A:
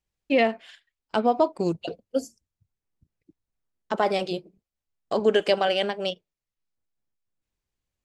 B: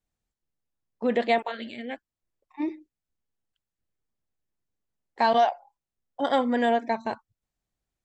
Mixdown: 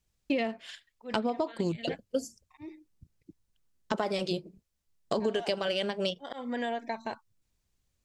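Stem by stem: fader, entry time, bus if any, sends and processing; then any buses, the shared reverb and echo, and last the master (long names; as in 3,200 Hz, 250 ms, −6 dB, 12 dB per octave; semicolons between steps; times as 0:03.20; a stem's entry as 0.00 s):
+2.5 dB, 0.00 s, no send, bass and treble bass +6 dB, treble +10 dB; notch filter 760 Hz, Q 12
−4.5 dB, 0.00 s, no send, high-shelf EQ 2,500 Hz +10 dB; volume swells 273 ms; downward compressor 2 to 1, threshold −27 dBFS, peak gain reduction 6.5 dB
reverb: not used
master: high-shelf EQ 6,900 Hz −8 dB; downward compressor 6 to 1, threshold −27 dBFS, peak gain reduction 15 dB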